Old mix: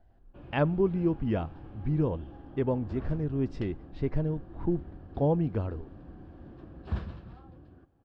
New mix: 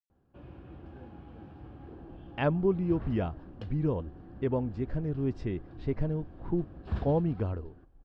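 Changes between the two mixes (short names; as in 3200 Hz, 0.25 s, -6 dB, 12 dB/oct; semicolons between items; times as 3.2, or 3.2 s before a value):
speech: entry +1.85 s; reverb: off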